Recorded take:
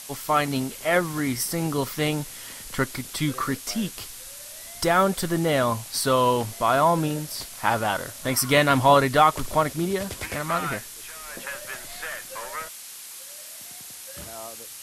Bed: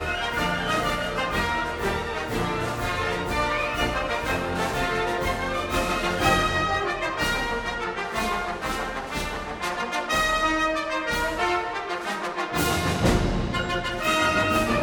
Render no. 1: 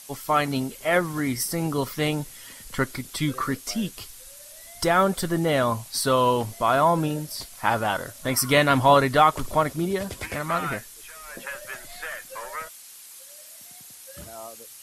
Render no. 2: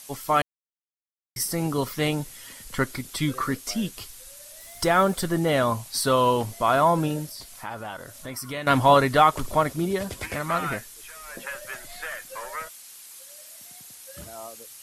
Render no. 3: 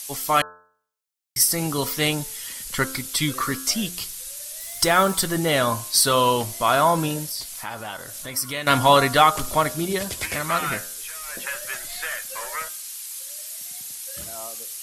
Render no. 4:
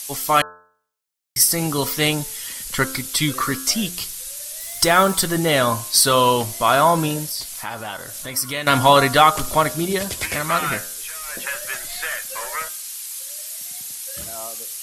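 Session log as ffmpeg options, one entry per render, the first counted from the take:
ffmpeg -i in.wav -af "afftdn=noise_reduction=7:noise_floor=-41" out.wav
ffmpeg -i in.wav -filter_complex "[0:a]asettb=1/sr,asplit=3[link_01][link_02][link_03];[link_01]atrim=end=4.604[link_04];[link_02]atrim=start=4.6:end=5.15,asetpts=PTS-STARTPTS,afade=type=in:duration=0.004:curve=qsin,afade=type=out:start_time=0.546:duration=0.004:curve=qsin,acrusher=bits=7:mix=0:aa=0.5[link_05];[link_03]atrim=start=5.146[link_06];[link_04][link_05]acrossfade=duration=0.004:curve1=hsin:curve2=qsin[link_07];[link_07][link_06]acrossfade=duration=0.004:curve1=qsin:curve2=hsin,asettb=1/sr,asplit=3[link_08][link_09][link_10];[link_08]atrim=end=7.294[link_11];[link_09]atrim=start=7.29:end=8.67,asetpts=PTS-STARTPTS,afade=type=in:duration=0.004:curve=qsin,afade=type=out:start_time=1.376:duration=0.004:curve=qsin,acompressor=threshold=-40dB:ratio=2:attack=3.2:release=140:knee=1:detection=peak[link_12];[link_10]atrim=start=8.666[link_13];[link_11][link_12]acrossfade=duration=0.004:curve1=hsin:curve2=qsin[link_14];[link_14][link_13]acrossfade=duration=0.004:curve1=qsin:curve2=hsin,asplit=3[link_15][link_16][link_17];[link_15]atrim=end=0.42,asetpts=PTS-STARTPTS,afade=type=out:start_time=0.416:duration=0.004:curve=hsin[link_18];[link_16]atrim=start=0.42:end=1.36,asetpts=PTS-STARTPTS,volume=0[link_19];[link_17]atrim=start=1.36,asetpts=PTS-STARTPTS,afade=type=in:duration=0.004:curve=hsin[link_20];[link_18][link_19][link_20]concat=n=3:v=0:a=1" out.wav
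ffmpeg -i in.wav -af "highshelf=frequency=2100:gain=10.5,bandreject=frequency=88.06:width_type=h:width=4,bandreject=frequency=176.12:width_type=h:width=4,bandreject=frequency=264.18:width_type=h:width=4,bandreject=frequency=352.24:width_type=h:width=4,bandreject=frequency=440.3:width_type=h:width=4,bandreject=frequency=528.36:width_type=h:width=4,bandreject=frequency=616.42:width_type=h:width=4,bandreject=frequency=704.48:width_type=h:width=4,bandreject=frequency=792.54:width_type=h:width=4,bandreject=frequency=880.6:width_type=h:width=4,bandreject=frequency=968.66:width_type=h:width=4,bandreject=frequency=1056.72:width_type=h:width=4,bandreject=frequency=1144.78:width_type=h:width=4,bandreject=frequency=1232.84:width_type=h:width=4,bandreject=frequency=1320.9:width_type=h:width=4,bandreject=frequency=1408.96:width_type=h:width=4,bandreject=frequency=1497.02:width_type=h:width=4,bandreject=frequency=1585.08:width_type=h:width=4,bandreject=frequency=1673.14:width_type=h:width=4" out.wav
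ffmpeg -i in.wav -af "volume=3dB,alimiter=limit=-1dB:level=0:latency=1" out.wav

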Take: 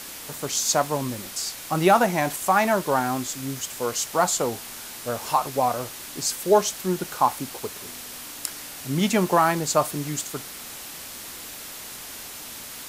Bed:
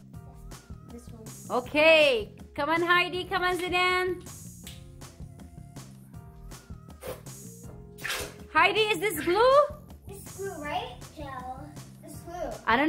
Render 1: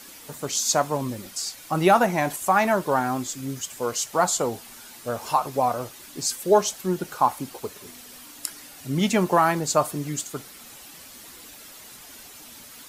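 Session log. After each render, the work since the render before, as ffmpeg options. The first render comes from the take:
ffmpeg -i in.wav -af "afftdn=noise_reduction=9:noise_floor=-39" out.wav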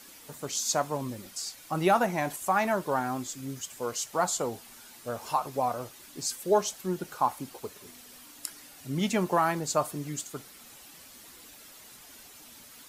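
ffmpeg -i in.wav -af "volume=-6dB" out.wav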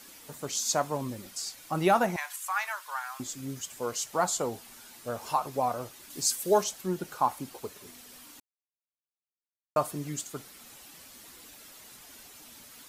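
ffmpeg -i in.wav -filter_complex "[0:a]asettb=1/sr,asplit=3[link_01][link_02][link_03];[link_01]atrim=end=2.164[link_04];[link_02]atrim=start=2.16:end=3.2,asetpts=PTS-STARTPTS,afade=type=in:duration=0.004:curve=qsin,afade=type=out:start_time=1.036:duration=0.004:curve=qsin,highpass=frequency=1100:width=0.5412,highpass=frequency=1100:width=1.3066[link_05];[link_03]atrim=start=3.196[link_06];[link_04][link_05]acrossfade=duration=0.004:curve1=hsin:curve2=qsin[link_07];[link_07][link_06]acrossfade=duration=0.004:curve1=qsin:curve2=hsin,asettb=1/sr,asplit=3[link_08][link_09][link_10];[link_08]atrim=end=6.104[link_11];[link_09]atrim=start=6.1:end=6.64,asetpts=PTS-STARTPTS,afade=type=in:duration=0.004:curve=qsin,afade=type=out:start_time=0.536:duration=0.004:curve=qsin,highshelf=frequency=4400:gain=7.5[link_12];[link_10]atrim=start=6.636[link_13];[link_11][link_12]acrossfade=duration=0.004:curve1=hsin:curve2=qsin[link_14];[link_14][link_13]acrossfade=duration=0.004:curve1=qsin:curve2=hsin,asplit=3[link_15][link_16][link_17];[link_15]atrim=end=8.4,asetpts=PTS-STARTPTS,afade=type=out:start_time=8.396:duration=0.004:curve=hsin[link_18];[link_16]atrim=start=8.4:end=9.76,asetpts=PTS-STARTPTS,volume=0[link_19];[link_17]atrim=start=9.76,asetpts=PTS-STARTPTS,afade=type=in:duration=0.004:curve=hsin[link_20];[link_18][link_19][link_20]concat=n=3:v=0:a=1" out.wav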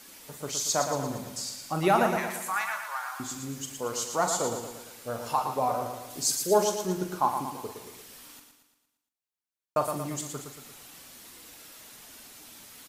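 ffmpeg -i in.wav -filter_complex "[0:a]asplit=2[link_01][link_02];[link_02]adelay=43,volume=-9dB[link_03];[link_01][link_03]amix=inputs=2:normalize=0,aecho=1:1:115|230|345|460|575|690:0.447|0.223|0.112|0.0558|0.0279|0.014" out.wav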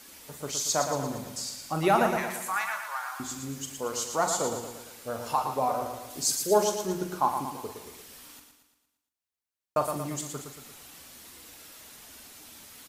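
ffmpeg -i in.wav -af "equalizer=frequency=74:width_type=o:width=0.34:gain=10,bandreject=frequency=60:width_type=h:width=6,bandreject=frequency=120:width_type=h:width=6,bandreject=frequency=180:width_type=h:width=6" out.wav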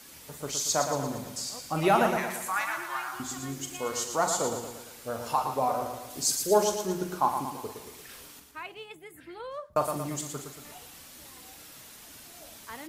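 ffmpeg -i in.wav -i bed.wav -filter_complex "[1:a]volume=-19.5dB[link_01];[0:a][link_01]amix=inputs=2:normalize=0" out.wav

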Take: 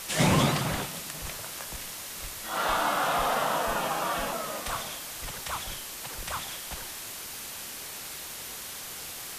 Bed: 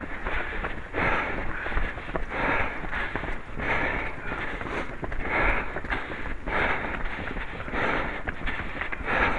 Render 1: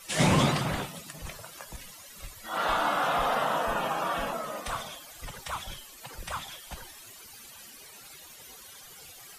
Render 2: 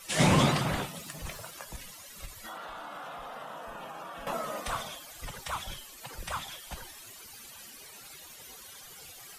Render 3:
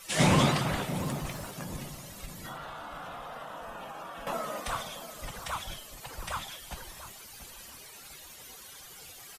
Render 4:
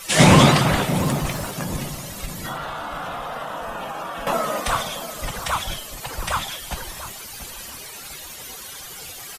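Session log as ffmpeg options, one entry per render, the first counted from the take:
ffmpeg -i in.wav -af "afftdn=noise_reduction=15:noise_floor=-40" out.wav
ffmpeg -i in.wav -filter_complex "[0:a]asettb=1/sr,asplit=3[link_01][link_02][link_03];[link_01]atrim=end=1.004[link_04];[link_02]atrim=start=1:end=1.51,asetpts=PTS-STARTPTS,afade=type=in:duration=0.004:curve=qsin,afade=type=out:start_time=0.506:duration=0.004:curve=qsin,aeval=exprs='val(0)+0.5*0.00211*sgn(val(0))':channel_layout=same[link_05];[link_03]atrim=start=1.506[link_06];[link_04][link_05]acrossfade=duration=0.004:curve1=hsin:curve2=qsin[link_07];[link_07][link_06]acrossfade=duration=0.004:curve1=qsin:curve2=hsin,asettb=1/sr,asplit=3[link_08][link_09][link_10];[link_08]atrim=end=2.254[link_11];[link_09]atrim=start=2.25:end=4.27,asetpts=PTS-STARTPTS,afade=type=in:duration=0.004:curve=qsin,afade=type=out:start_time=2.016:duration=0.004:curve=qsin,acompressor=threshold=-38dB:ratio=16:attack=3.2:release=140:knee=1:detection=peak[link_12];[link_10]atrim=start=4.266[link_13];[link_11][link_12]acrossfade=duration=0.004:curve1=hsin:curve2=qsin[link_14];[link_14][link_13]acrossfade=duration=0.004:curve1=qsin:curve2=hsin" out.wav
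ffmpeg -i in.wav -filter_complex "[0:a]asplit=2[link_01][link_02];[link_02]adelay=690,lowpass=frequency=1000:poles=1,volume=-10dB,asplit=2[link_03][link_04];[link_04]adelay=690,lowpass=frequency=1000:poles=1,volume=0.44,asplit=2[link_05][link_06];[link_06]adelay=690,lowpass=frequency=1000:poles=1,volume=0.44,asplit=2[link_07][link_08];[link_08]adelay=690,lowpass=frequency=1000:poles=1,volume=0.44,asplit=2[link_09][link_10];[link_10]adelay=690,lowpass=frequency=1000:poles=1,volume=0.44[link_11];[link_01][link_03][link_05][link_07][link_09][link_11]amix=inputs=6:normalize=0" out.wav
ffmpeg -i in.wav -af "volume=11.5dB,alimiter=limit=-1dB:level=0:latency=1" out.wav

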